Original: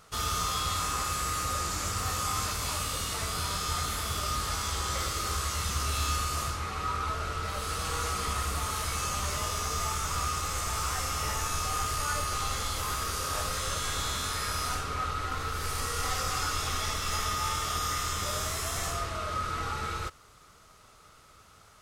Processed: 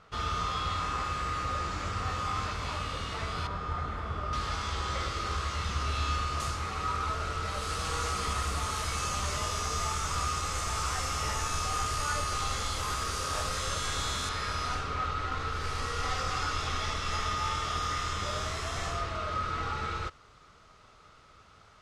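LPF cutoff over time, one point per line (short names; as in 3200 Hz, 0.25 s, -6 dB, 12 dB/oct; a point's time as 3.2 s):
3200 Hz
from 3.47 s 1500 Hz
from 4.33 s 3900 Hz
from 6.4 s 8100 Hz
from 14.29 s 4700 Hz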